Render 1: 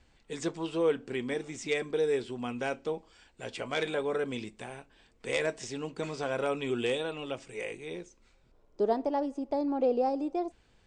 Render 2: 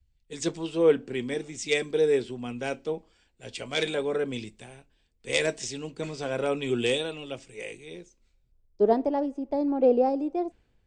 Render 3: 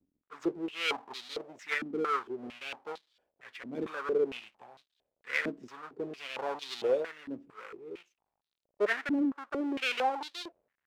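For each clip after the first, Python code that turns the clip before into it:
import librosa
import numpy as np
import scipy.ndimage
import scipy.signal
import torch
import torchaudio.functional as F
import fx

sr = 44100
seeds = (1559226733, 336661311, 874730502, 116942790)

y1 = fx.peak_eq(x, sr, hz=1100.0, db=-6.0, octaves=1.5)
y1 = fx.band_widen(y1, sr, depth_pct=70)
y1 = y1 * 10.0 ** (5.0 / 20.0)
y2 = fx.halfwave_hold(y1, sr)
y2 = fx.filter_held_bandpass(y2, sr, hz=4.4, low_hz=270.0, high_hz=3900.0)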